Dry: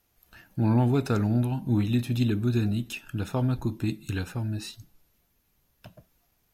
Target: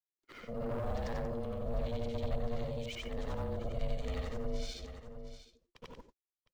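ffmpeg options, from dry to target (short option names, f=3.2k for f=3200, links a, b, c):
-filter_complex "[0:a]afftfilt=real='re':imag='-im':win_size=8192:overlap=0.75,agate=range=-45dB:threshold=-59dB:ratio=16:detection=peak,flanger=delay=0.7:depth=6.5:regen=82:speed=0.32:shape=sinusoidal,asoftclip=type=tanh:threshold=-35dB,asplit=2[a][b];[b]aecho=0:1:709:0.133[c];[a][c]amix=inputs=2:normalize=0,alimiter=level_in=19.5dB:limit=-24dB:level=0:latency=1:release=229,volume=-19.5dB,lowpass=f=7k:w=0.5412,lowpass=f=7k:w=1.3066,aeval=exprs='val(0)*sin(2*PI*350*n/s)':c=same,acrossover=split=320|810[d][e][f];[f]acrusher=bits=5:mode=log:mix=0:aa=0.000001[g];[d][e][g]amix=inputs=3:normalize=0,asubboost=boost=8.5:cutoff=69,volume=12.5dB"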